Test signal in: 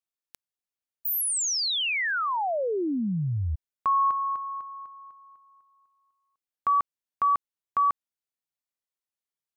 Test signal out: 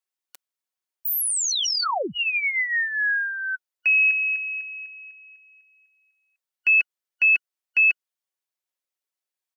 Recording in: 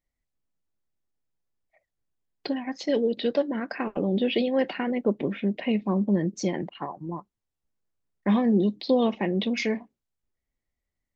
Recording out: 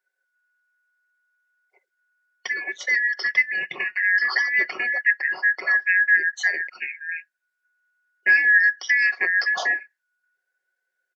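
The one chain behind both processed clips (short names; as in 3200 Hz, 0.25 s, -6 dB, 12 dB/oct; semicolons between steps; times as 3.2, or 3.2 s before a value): four-band scrambler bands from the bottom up 2143; HPF 370 Hz 12 dB/oct; comb 5.4 ms, depth 48%; gain +2 dB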